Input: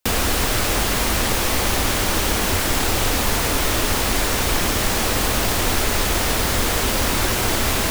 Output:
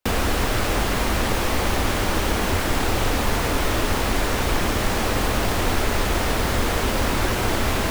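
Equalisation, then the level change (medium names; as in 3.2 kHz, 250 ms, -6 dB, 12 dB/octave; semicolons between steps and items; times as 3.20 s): treble shelf 3.4 kHz -9.5 dB; 0.0 dB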